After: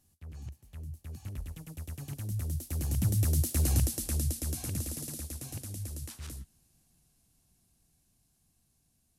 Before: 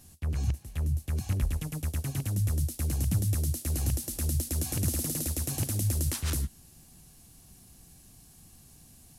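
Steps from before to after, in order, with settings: Doppler pass-by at 3.59, 11 m/s, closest 4.9 m; gain +3 dB

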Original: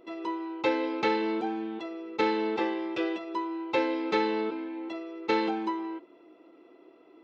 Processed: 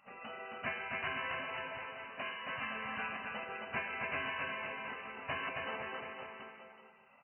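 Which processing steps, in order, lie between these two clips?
1.77–2.5 HPF 570 Hz 6 dB/oct; spectral gate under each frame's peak -20 dB weak; brick-wall FIR low-pass 3000 Hz; bouncing-ball echo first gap 0.27 s, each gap 0.9×, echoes 5; gain +4 dB

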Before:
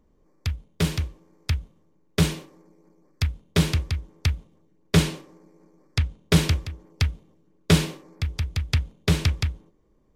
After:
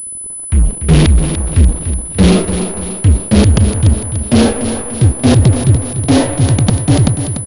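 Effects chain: speed glide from 85% -> 187%; low shelf 330 Hz +7.5 dB; limiter -8.5 dBFS, peak gain reduction 6.5 dB; auto swell 0.184 s; sample leveller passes 5; AGC gain up to 13 dB; dynamic EQ 1300 Hz, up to -5 dB, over -27 dBFS, Q 0.7; feedback echo 0.292 s, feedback 47%, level -9.5 dB; pulse-width modulation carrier 10000 Hz

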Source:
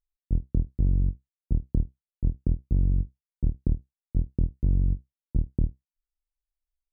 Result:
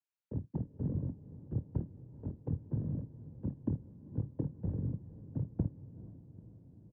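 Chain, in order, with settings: harmoniser -7 st -12 dB; noise vocoder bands 8; on a send: diffused feedback echo 0.454 s, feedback 65%, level -15.5 dB; on the sum: frequency shift -16 Hz; gain -4 dB

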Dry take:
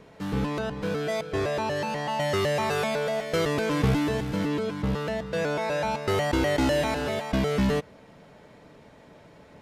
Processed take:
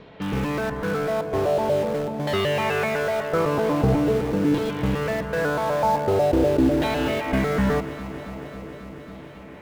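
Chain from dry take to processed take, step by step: LFO low-pass saw down 0.44 Hz 330–4000 Hz; in parallel at -8.5 dB: wrapped overs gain 26 dB; on the sum: high shelf 2900 Hz -7 dB; echo with dull and thin repeats by turns 0.136 s, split 1000 Hz, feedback 89%, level -13 dB; gain +2 dB

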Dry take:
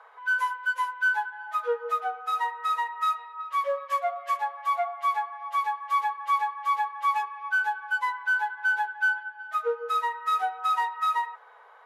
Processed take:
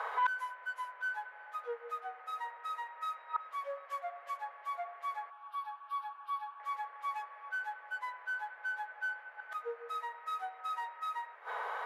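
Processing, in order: flipped gate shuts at -34 dBFS, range -27 dB; band noise 520–2000 Hz -72 dBFS; 5.3–6.6 fixed phaser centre 2000 Hz, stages 6; gain +14 dB

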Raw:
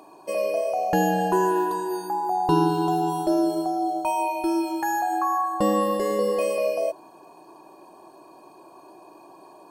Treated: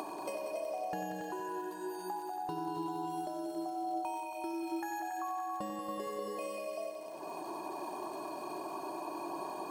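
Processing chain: HPF 150 Hz 6 dB/oct; notch 500 Hz, Q 12; compressor 12:1, threshold -52 dBFS, peak gain reduction 35 dB; crackle 93/s -60 dBFS; multi-head echo 93 ms, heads all three, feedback 62%, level -11 dB; gain +13 dB

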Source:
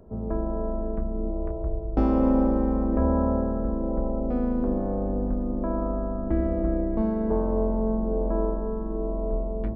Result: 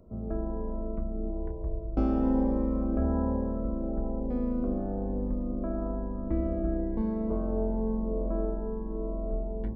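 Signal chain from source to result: cascading phaser rising 1.1 Hz; gain -4 dB

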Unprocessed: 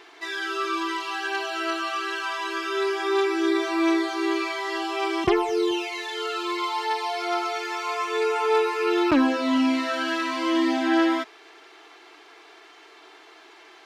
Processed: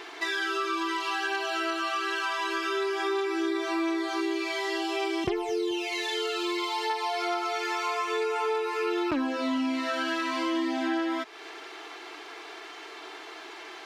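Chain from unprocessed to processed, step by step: 4.21–6.9 bell 1200 Hz -8.5 dB 0.92 oct; compressor 5:1, threshold -34 dBFS, peak gain reduction 16 dB; gain +6.5 dB

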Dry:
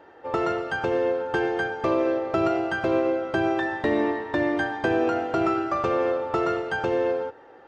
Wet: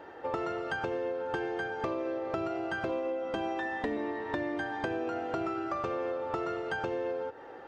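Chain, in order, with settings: 2.89–3.97 comb 4.1 ms, depth 81%; compressor 6:1, threshold -34 dBFS, peak gain reduction 16 dB; gain +2.5 dB

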